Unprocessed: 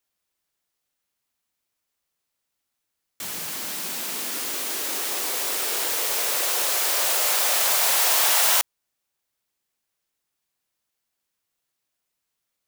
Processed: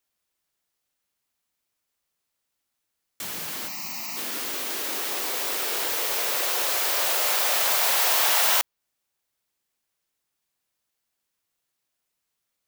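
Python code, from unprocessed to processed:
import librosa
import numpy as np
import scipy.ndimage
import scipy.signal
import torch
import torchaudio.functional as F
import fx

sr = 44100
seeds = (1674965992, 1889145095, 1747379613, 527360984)

y = fx.fixed_phaser(x, sr, hz=2300.0, stages=8, at=(3.67, 4.16), fade=0.02)
y = fx.dynamic_eq(y, sr, hz=9000.0, q=0.76, threshold_db=-37.0, ratio=4.0, max_db=-5)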